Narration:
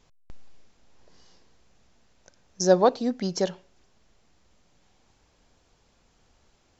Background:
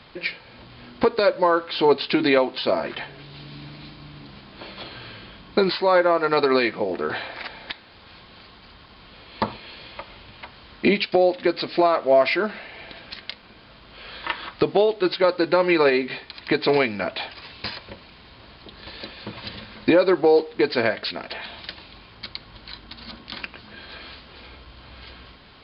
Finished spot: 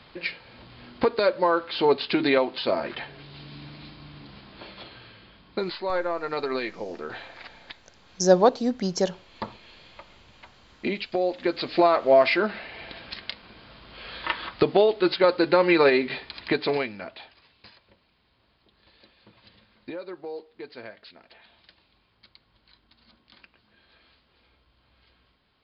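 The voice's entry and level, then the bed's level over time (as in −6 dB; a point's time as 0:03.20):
5.60 s, +1.5 dB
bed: 0:04.52 −3 dB
0:05.13 −9.5 dB
0:11.00 −9.5 dB
0:11.83 −0.5 dB
0:16.39 −0.5 dB
0:17.55 −20 dB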